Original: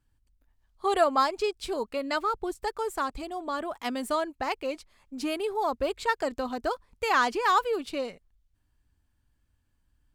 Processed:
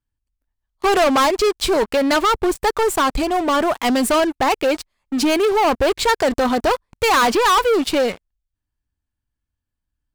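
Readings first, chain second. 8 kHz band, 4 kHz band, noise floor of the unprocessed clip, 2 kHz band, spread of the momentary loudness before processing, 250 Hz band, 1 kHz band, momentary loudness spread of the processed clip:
+17.0 dB, +14.0 dB, -73 dBFS, +10.0 dB, 10 LU, +14.5 dB, +10.0 dB, 6 LU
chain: waveshaping leveller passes 5

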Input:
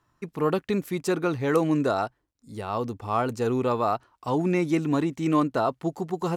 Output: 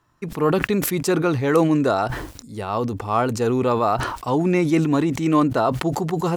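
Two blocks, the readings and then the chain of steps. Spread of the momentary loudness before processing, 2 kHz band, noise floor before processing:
8 LU, +6.5 dB, -75 dBFS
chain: decay stretcher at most 50 dB/s; trim +4.5 dB

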